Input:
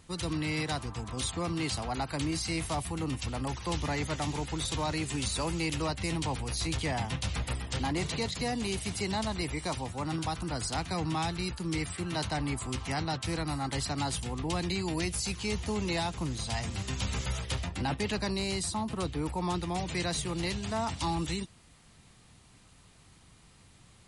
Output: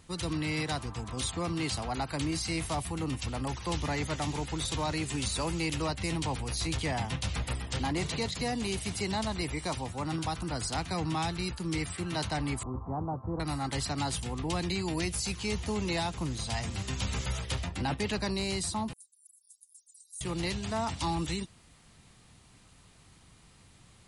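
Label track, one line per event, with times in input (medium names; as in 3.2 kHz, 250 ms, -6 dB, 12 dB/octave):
12.630000	13.400000	elliptic low-pass 1.1 kHz, stop band 60 dB
18.930000	20.210000	inverse Chebyshev high-pass stop band from 1.8 kHz, stop band 80 dB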